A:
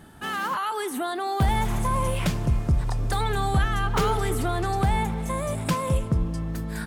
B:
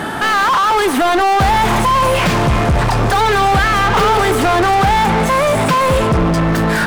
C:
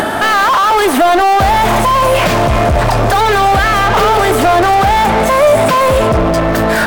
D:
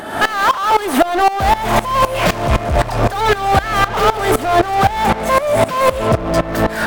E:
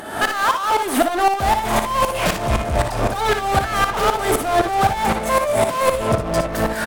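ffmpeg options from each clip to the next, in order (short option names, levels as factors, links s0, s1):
-filter_complex "[0:a]asplit=2[s0][s1];[s1]highpass=f=720:p=1,volume=50.1,asoftclip=type=tanh:threshold=0.2[s2];[s0][s2]amix=inputs=2:normalize=0,lowpass=f=1900:p=1,volume=0.501,volume=2.51"
-filter_complex "[0:a]equalizer=f=160:t=o:w=0.33:g=-8,equalizer=f=630:t=o:w=0.33:g=9,equalizer=f=16000:t=o:w=0.33:g=10,asplit=2[s0][s1];[s1]alimiter=limit=0.299:level=0:latency=1,volume=1.19[s2];[s0][s2]amix=inputs=2:normalize=0,acompressor=mode=upward:threshold=0.316:ratio=2.5,volume=0.708"
-af "aeval=exprs='val(0)*pow(10,-18*if(lt(mod(-3.9*n/s,1),2*abs(-3.9)/1000),1-mod(-3.9*n/s,1)/(2*abs(-3.9)/1000),(mod(-3.9*n/s,1)-2*abs(-3.9)/1000)/(1-2*abs(-3.9)/1000))/20)':c=same,volume=1.19"
-filter_complex "[0:a]equalizer=f=9900:w=0.78:g=6,asplit=2[s0][s1];[s1]aecho=0:1:59|74:0.422|0.168[s2];[s0][s2]amix=inputs=2:normalize=0,volume=0.562"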